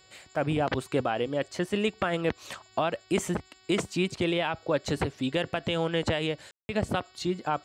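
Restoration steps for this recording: de-hum 374.6 Hz, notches 14; room tone fill 6.51–6.69

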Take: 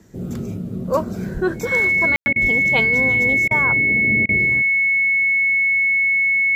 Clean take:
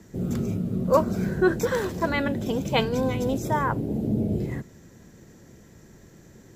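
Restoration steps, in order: notch 2200 Hz, Q 30; 1.33–1.45 HPF 140 Hz 24 dB/oct; 2.41–2.53 HPF 140 Hz 24 dB/oct; room tone fill 2.16–2.26; interpolate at 2.33/3.48/4.26, 28 ms

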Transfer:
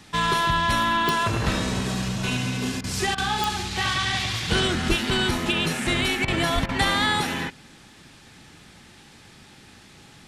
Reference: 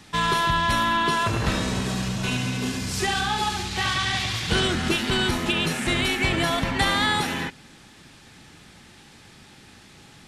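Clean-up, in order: de-click; de-plosive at 4.88/6.54; interpolate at 2.81/3.15/6.25/6.66, 28 ms

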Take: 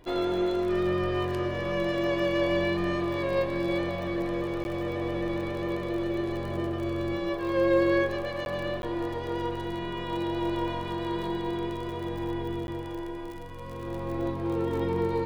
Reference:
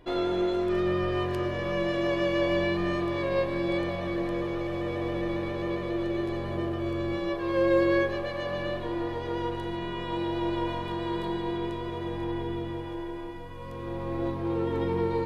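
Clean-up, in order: de-click; interpolate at 4.64/8.45/8.82/12.67, 11 ms

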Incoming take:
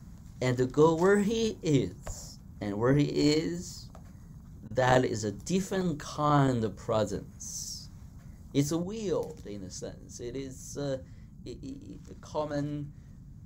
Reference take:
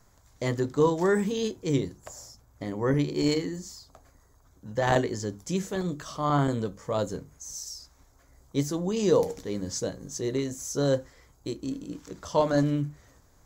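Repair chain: 2.06–2.18 HPF 140 Hz 24 dB/oct; interpolate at 4.68, 24 ms; noise print and reduce 10 dB; gain 0 dB, from 8.83 s +9 dB

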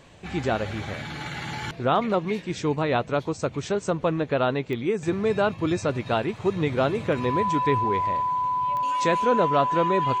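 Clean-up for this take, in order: de-click; notch 1000 Hz, Q 30

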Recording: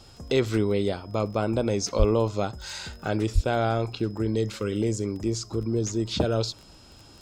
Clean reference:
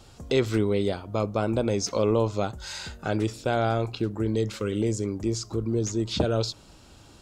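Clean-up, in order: de-click; notch 5100 Hz, Q 30; 1.98–2.1 HPF 140 Hz 24 dB/oct; 3.34–3.46 HPF 140 Hz 24 dB/oct

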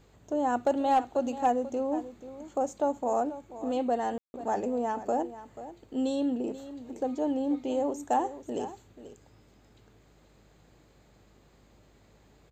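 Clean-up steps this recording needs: clip repair -16.5 dBFS; de-hum 51.3 Hz, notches 8; room tone fill 4.18–4.34; inverse comb 0.486 s -14 dB

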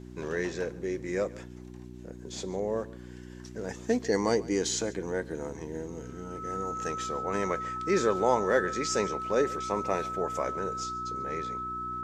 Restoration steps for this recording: de-hum 61.2 Hz, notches 6; notch 1300 Hz, Q 30; inverse comb 0.14 s -20.5 dB

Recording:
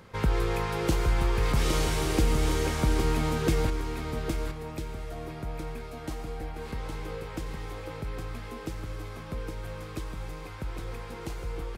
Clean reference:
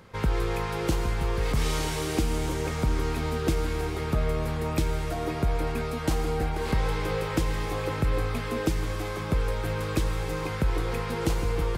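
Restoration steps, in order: inverse comb 0.813 s -5.5 dB; gain 0 dB, from 3.7 s +10.5 dB

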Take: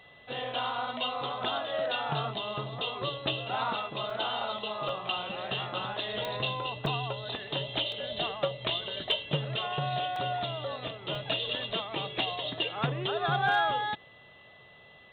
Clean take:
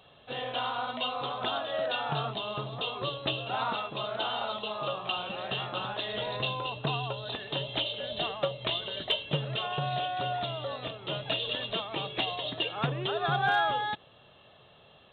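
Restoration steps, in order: de-click; notch 2000 Hz, Q 30; interpolate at 4.1/4.89/6.86/7.92/10.16/11.15, 2.6 ms

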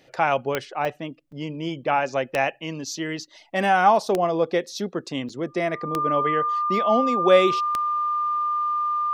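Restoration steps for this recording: de-click; notch 1200 Hz, Q 30; interpolate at 0.85/1.32/5.29, 4.2 ms

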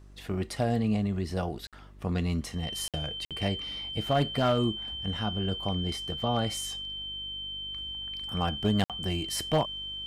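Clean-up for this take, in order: clip repair -18 dBFS; de-hum 49.3 Hz, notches 8; notch 3100 Hz, Q 30; interpolate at 1.67/2.88/3.25/8.84, 57 ms

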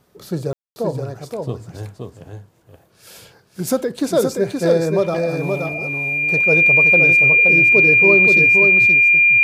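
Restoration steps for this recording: notch 2400 Hz, Q 30; room tone fill 0.53–0.76; inverse comb 0.523 s -4.5 dB

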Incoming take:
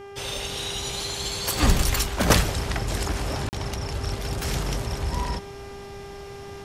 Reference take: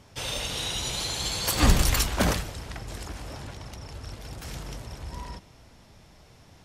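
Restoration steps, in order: de-hum 399.1 Hz, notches 8; interpolate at 3.49, 39 ms; gain 0 dB, from 2.3 s -10.5 dB

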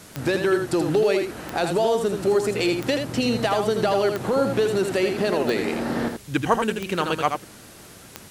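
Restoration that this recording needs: de-click; denoiser 24 dB, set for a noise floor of -45 dBFS; inverse comb 81 ms -6 dB

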